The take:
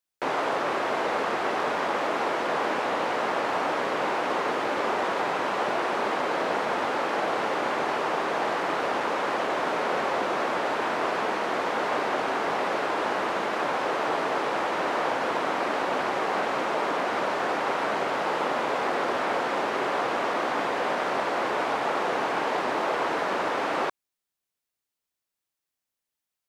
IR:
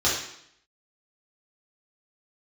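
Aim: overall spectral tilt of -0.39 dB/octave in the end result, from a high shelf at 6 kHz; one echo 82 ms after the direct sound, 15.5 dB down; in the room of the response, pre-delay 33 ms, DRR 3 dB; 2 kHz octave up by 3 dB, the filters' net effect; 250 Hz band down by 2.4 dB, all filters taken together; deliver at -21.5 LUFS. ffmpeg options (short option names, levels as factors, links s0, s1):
-filter_complex "[0:a]equalizer=f=250:t=o:g=-3.5,equalizer=f=2000:t=o:g=3.5,highshelf=f=6000:g=4,aecho=1:1:82:0.168,asplit=2[s0][s1];[1:a]atrim=start_sample=2205,adelay=33[s2];[s1][s2]afir=irnorm=-1:irlink=0,volume=0.133[s3];[s0][s3]amix=inputs=2:normalize=0,volume=1.33"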